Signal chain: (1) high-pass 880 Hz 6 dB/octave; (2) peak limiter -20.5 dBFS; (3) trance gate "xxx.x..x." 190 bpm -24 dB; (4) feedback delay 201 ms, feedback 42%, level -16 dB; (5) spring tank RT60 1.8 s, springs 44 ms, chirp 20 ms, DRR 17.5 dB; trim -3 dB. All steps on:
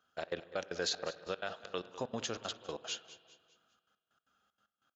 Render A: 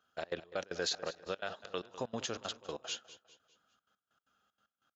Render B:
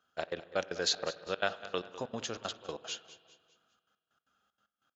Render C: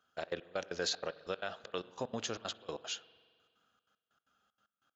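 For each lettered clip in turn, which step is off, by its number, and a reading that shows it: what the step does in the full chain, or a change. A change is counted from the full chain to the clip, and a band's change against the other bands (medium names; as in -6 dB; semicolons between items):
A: 5, echo-to-direct -13.0 dB to -15.0 dB; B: 2, crest factor change +6.0 dB; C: 4, echo-to-direct -13.0 dB to -17.5 dB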